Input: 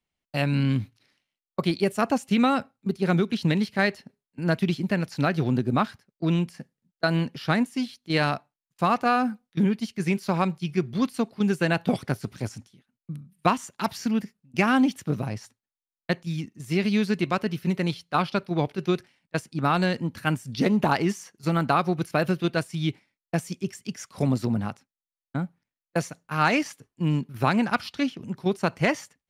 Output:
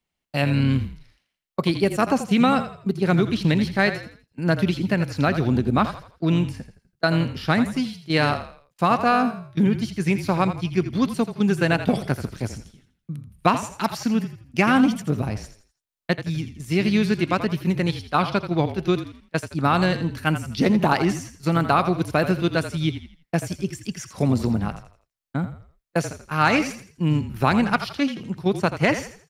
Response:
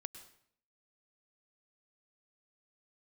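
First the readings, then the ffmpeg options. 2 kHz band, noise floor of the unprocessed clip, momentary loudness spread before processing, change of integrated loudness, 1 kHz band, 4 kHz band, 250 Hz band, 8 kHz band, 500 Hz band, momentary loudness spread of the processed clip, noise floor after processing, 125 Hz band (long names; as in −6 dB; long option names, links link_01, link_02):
+3.5 dB, below −85 dBFS, 10 LU, +3.5 dB, +3.5 dB, +3.5 dB, +3.5 dB, +3.5 dB, +3.5 dB, 10 LU, −79 dBFS, +3.5 dB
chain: -filter_complex "[0:a]asplit=5[link_01][link_02][link_03][link_04][link_05];[link_02]adelay=83,afreqshift=-38,volume=-11dB[link_06];[link_03]adelay=166,afreqshift=-76,volume=-19.9dB[link_07];[link_04]adelay=249,afreqshift=-114,volume=-28.7dB[link_08];[link_05]adelay=332,afreqshift=-152,volume=-37.6dB[link_09];[link_01][link_06][link_07][link_08][link_09]amix=inputs=5:normalize=0,volume=3dB"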